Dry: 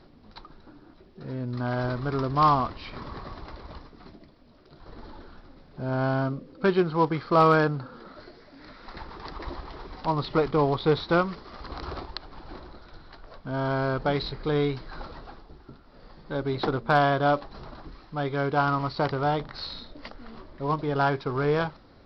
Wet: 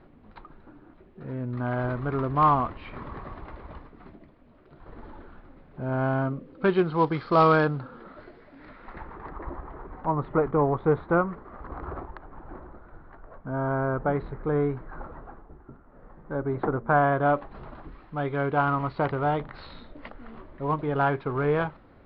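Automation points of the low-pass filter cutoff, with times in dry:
low-pass filter 24 dB per octave
0:06.30 2,700 Hz
0:07.40 5,000 Hz
0:07.98 2,900 Hz
0:08.68 2,900 Hz
0:09.43 1,700 Hz
0:16.80 1,700 Hz
0:17.60 2,800 Hz

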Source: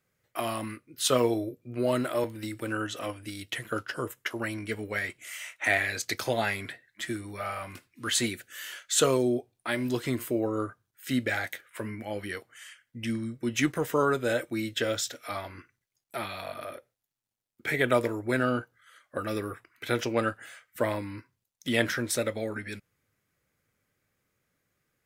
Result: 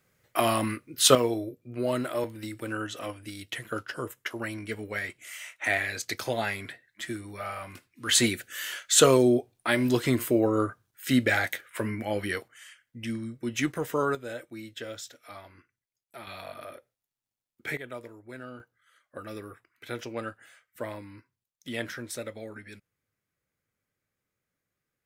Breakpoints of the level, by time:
+7 dB
from 0:01.15 −1.5 dB
from 0:08.09 +5 dB
from 0:12.48 −2 dB
from 0:14.15 −10 dB
from 0:16.27 −3.5 dB
from 0:17.77 −16 dB
from 0:18.60 −8 dB

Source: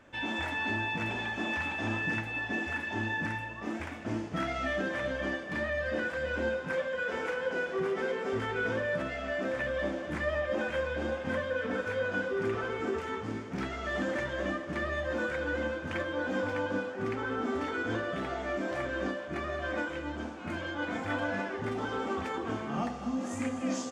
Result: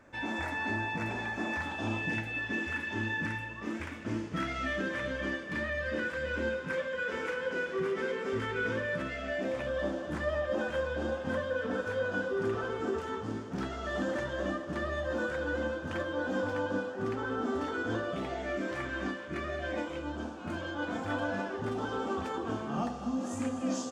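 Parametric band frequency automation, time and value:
parametric band −10 dB 0.45 octaves
0:01.54 3,100 Hz
0:02.50 730 Hz
0:09.11 730 Hz
0:09.74 2,200 Hz
0:18.02 2,200 Hz
0:18.98 470 Hz
0:20.11 2,100 Hz

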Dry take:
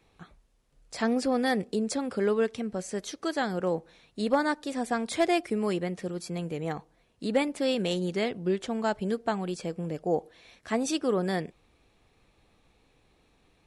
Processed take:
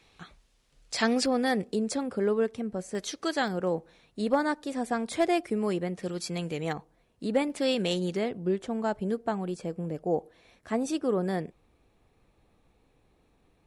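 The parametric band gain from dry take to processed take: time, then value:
parametric band 4,100 Hz 2.8 octaves
+9 dB
from 0:01.26 −1 dB
from 0:02.03 −7.5 dB
from 0:02.95 +3.5 dB
from 0:03.48 −3.5 dB
from 0:06.03 +6.5 dB
from 0:06.73 −4.5 dB
from 0:07.50 +2 dB
from 0:08.17 −7.5 dB

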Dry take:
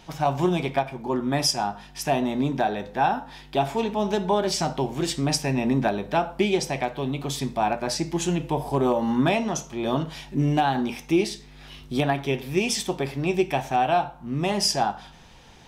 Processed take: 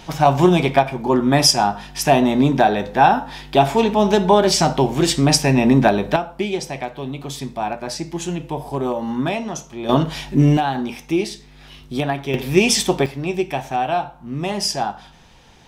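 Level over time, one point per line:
+9 dB
from 0:06.16 −0.5 dB
from 0:09.89 +9 dB
from 0:10.57 +1.5 dB
from 0:12.34 +9 dB
from 0:13.06 +1 dB

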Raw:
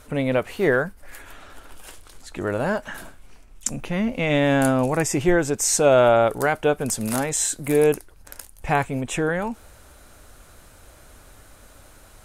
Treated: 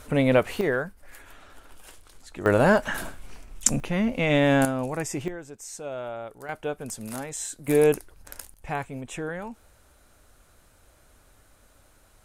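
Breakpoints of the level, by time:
+2 dB
from 0:00.61 −6 dB
from 0:02.46 +5 dB
from 0:03.80 −1 dB
from 0:04.65 −8 dB
from 0:05.28 −19 dB
from 0:06.49 −10.5 dB
from 0:07.68 −1.5 dB
from 0:08.54 −9.5 dB

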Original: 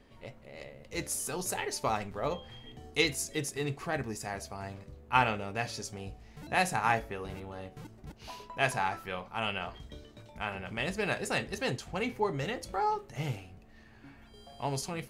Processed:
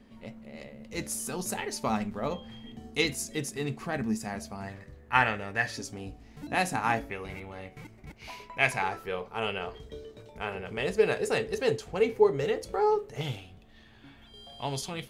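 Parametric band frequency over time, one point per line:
parametric band +14.5 dB 0.31 octaves
220 Hz
from 0:04.68 1,800 Hz
from 0:05.77 270 Hz
from 0:07.10 2,200 Hz
from 0:08.82 440 Hz
from 0:13.21 3,400 Hz

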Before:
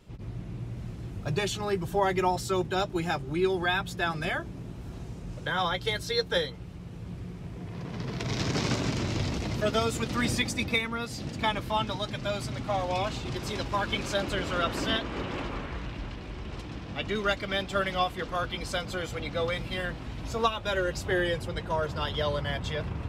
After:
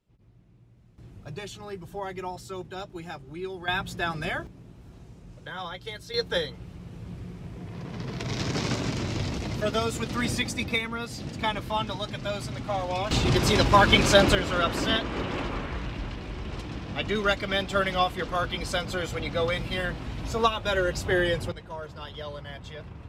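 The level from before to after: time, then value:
−20 dB
from 0:00.98 −9 dB
from 0:03.68 0 dB
from 0:04.47 −8 dB
from 0:06.14 0 dB
from 0:13.11 +11.5 dB
from 0:14.35 +3 dB
from 0:21.52 −8.5 dB

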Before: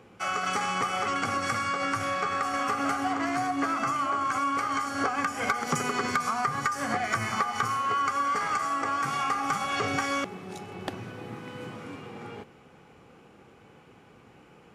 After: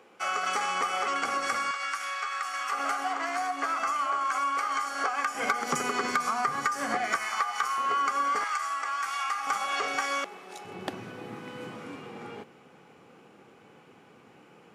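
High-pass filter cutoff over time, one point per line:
380 Hz
from 0:01.71 1,300 Hz
from 0:02.72 580 Hz
from 0:05.35 240 Hz
from 0:07.16 760 Hz
from 0:07.78 300 Hz
from 0:08.44 1,100 Hz
from 0:09.47 520 Hz
from 0:10.65 160 Hz

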